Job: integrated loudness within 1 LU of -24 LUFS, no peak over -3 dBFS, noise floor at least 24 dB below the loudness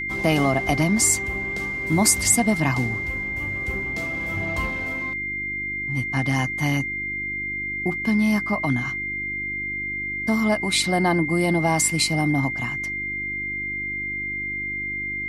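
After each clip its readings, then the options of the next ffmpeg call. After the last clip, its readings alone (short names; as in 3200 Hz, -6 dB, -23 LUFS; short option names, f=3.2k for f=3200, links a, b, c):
hum 50 Hz; harmonics up to 350 Hz; hum level -38 dBFS; steady tone 2100 Hz; tone level -26 dBFS; loudness -22.5 LUFS; peak -4.0 dBFS; loudness target -24.0 LUFS
-> -af "bandreject=f=50:t=h:w=4,bandreject=f=100:t=h:w=4,bandreject=f=150:t=h:w=4,bandreject=f=200:t=h:w=4,bandreject=f=250:t=h:w=4,bandreject=f=300:t=h:w=4,bandreject=f=350:t=h:w=4"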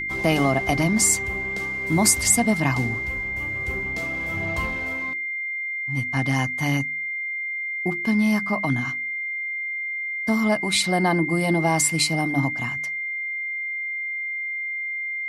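hum none; steady tone 2100 Hz; tone level -26 dBFS
-> -af "bandreject=f=2.1k:w=30"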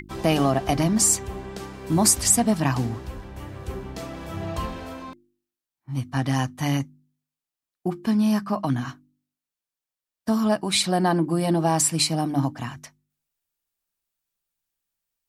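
steady tone none; loudness -22.5 LUFS; peak -5.0 dBFS; loudness target -24.0 LUFS
-> -af "volume=-1.5dB"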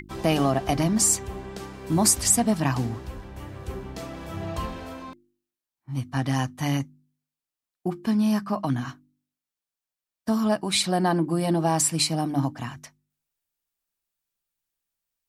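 loudness -24.0 LUFS; peak -6.5 dBFS; noise floor -90 dBFS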